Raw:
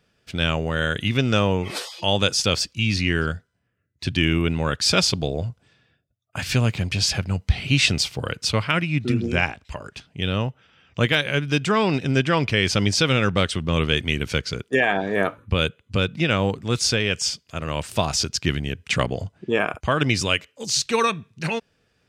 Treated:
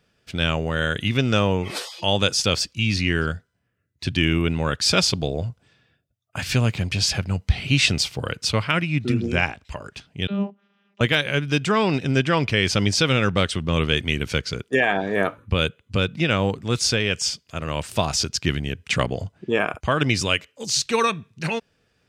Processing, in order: 10.27–11.01 s: vocoder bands 32, saw 200 Hz

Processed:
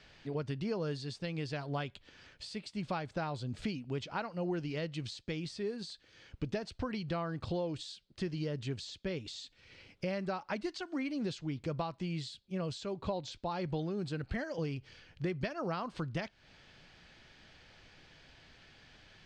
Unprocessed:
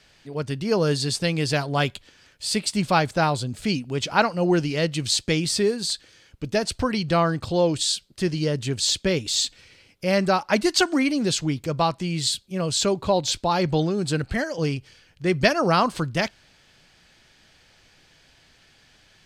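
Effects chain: treble shelf 2.6 kHz +10.5 dB; compression 6:1, threshold -32 dBFS, peak gain reduction 21.5 dB; tape spacing loss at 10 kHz 29 dB

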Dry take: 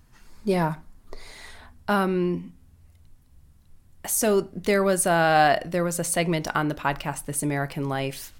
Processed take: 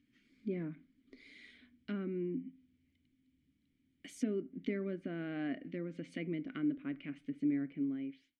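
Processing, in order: fade out at the end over 0.71 s; vowel filter i; low-pass that closes with the level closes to 1.3 kHz, closed at -37 dBFS; trim +1 dB

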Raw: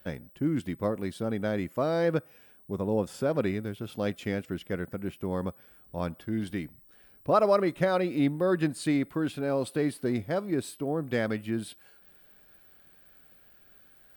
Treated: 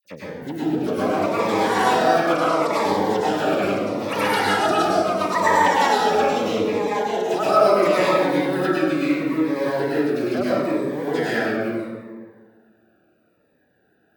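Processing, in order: local Wiener filter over 41 samples; phase dispersion lows, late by 51 ms, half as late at 2.4 kHz; ever faster or slower copies 419 ms, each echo +7 st, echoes 2; treble shelf 7.4 kHz +11.5 dB; peak limiter -19 dBFS, peak gain reduction 9 dB; frequency weighting A; plate-style reverb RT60 1.8 s, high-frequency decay 0.45×, pre-delay 90 ms, DRR -8.5 dB; Shepard-style phaser falling 0.75 Hz; trim +6.5 dB

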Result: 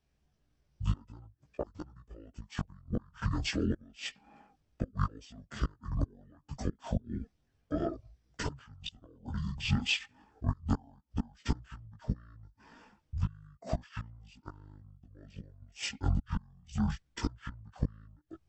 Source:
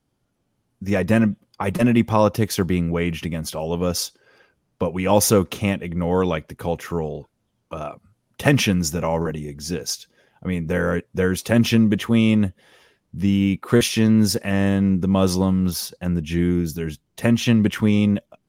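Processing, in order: inverted gate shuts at -12 dBFS, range -32 dB; pitch shift -11.5 st; chorus voices 4, 0.48 Hz, delay 17 ms, depth 3.7 ms

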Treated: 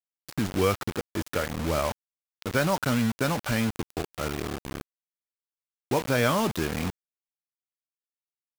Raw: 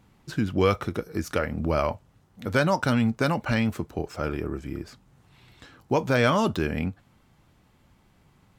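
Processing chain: bit crusher 5-bit; trim -2.5 dB

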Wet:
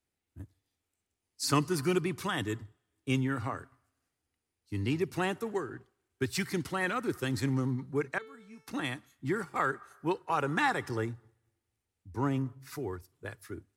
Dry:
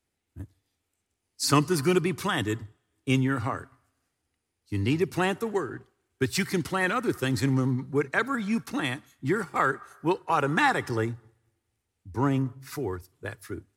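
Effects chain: 8.18–8.68 s: feedback comb 440 Hz, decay 0.67 s, mix 90%; trim -5.5 dB

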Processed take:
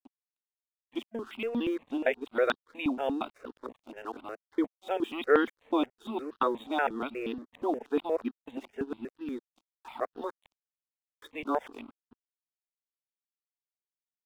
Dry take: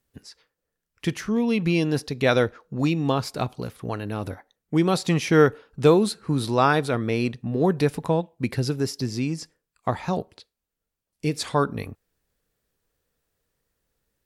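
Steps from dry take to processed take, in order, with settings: time reversed locally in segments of 229 ms; FFT band-pass 220–3800 Hz; crossover distortion -48 dBFS; stepped phaser 8.4 Hz 460–2200 Hz; trim -3.5 dB

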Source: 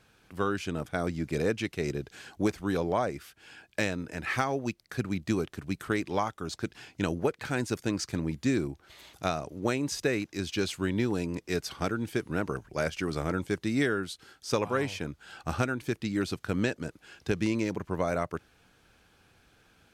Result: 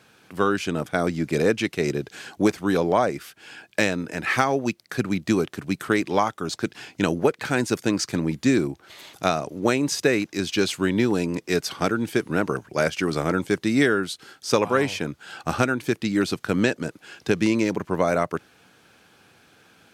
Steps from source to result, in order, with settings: high-pass 140 Hz 12 dB/octave; trim +8 dB

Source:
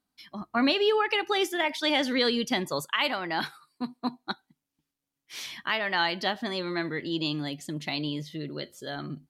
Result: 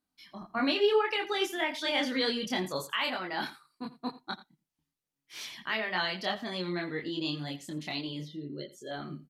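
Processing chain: 8.25–8.91 s: spectral contrast enhancement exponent 1.7; chorus voices 4, 0.69 Hz, delay 25 ms, depth 3.2 ms; delay 85 ms -17 dB; trim -1 dB

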